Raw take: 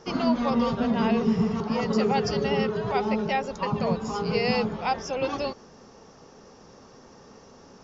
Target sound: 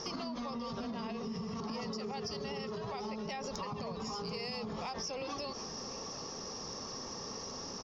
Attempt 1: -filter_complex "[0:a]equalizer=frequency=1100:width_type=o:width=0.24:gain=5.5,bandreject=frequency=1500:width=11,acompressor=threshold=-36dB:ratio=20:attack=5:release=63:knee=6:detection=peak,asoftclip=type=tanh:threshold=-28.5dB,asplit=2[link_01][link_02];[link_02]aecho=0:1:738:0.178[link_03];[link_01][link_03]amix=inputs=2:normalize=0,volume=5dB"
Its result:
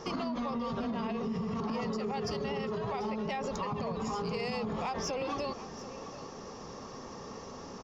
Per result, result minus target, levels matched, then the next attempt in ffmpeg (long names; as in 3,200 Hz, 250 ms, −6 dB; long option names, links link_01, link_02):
4,000 Hz band −7.0 dB; downward compressor: peak gain reduction −6.5 dB
-filter_complex "[0:a]lowpass=frequency=5500:width_type=q:width=4.7,equalizer=frequency=1100:width_type=o:width=0.24:gain=5.5,bandreject=frequency=1500:width=11,acompressor=threshold=-36dB:ratio=20:attack=5:release=63:knee=6:detection=peak,asoftclip=type=tanh:threshold=-28.5dB,asplit=2[link_01][link_02];[link_02]aecho=0:1:738:0.178[link_03];[link_01][link_03]amix=inputs=2:normalize=0,volume=5dB"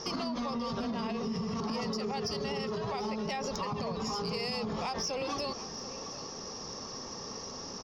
downward compressor: peak gain reduction −5.5 dB
-filter_complex "[0:a]lowpass=frequency=5500:width_type=q:width=4.7,equalizer=frequency=1100:width_type=o:width=0.24:gain=5.5,bandreject=frequency=1500:width=11,acompressor=threshold=-42dB:ratio=20:attack=5:release=63:knee=6:detection=peak,asoftclip=type=tanh:threshold=-28.5dB,asplit=2[link_01][link_02];[link_02]aecho=0:1:738:0.178[link_03];[link_01][link_03]amix=inputs=2:normalize=0,volume=5dB"